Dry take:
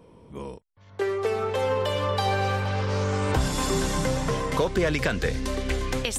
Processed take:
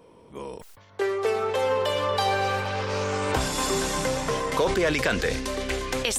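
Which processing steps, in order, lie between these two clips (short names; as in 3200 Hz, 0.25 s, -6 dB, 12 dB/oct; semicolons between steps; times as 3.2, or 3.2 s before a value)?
rattling part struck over -24 dBFS, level -31 dBFS; tone controls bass -9 dB, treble +1 dB; sustainer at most 50 dB/s; gain +1.5 dB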